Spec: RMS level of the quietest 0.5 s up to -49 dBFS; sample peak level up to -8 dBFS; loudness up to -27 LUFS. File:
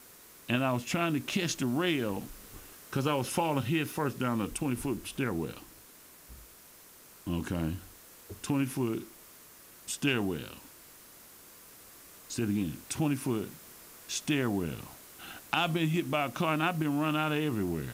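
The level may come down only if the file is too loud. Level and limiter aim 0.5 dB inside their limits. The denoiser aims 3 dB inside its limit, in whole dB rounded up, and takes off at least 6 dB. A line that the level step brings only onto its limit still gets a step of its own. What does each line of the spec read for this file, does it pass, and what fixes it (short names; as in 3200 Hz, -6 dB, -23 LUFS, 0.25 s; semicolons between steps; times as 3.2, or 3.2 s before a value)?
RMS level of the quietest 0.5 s -55 dBFS: OK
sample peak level -12.5 dBFS: OK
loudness -32.0 LUFS: OK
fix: none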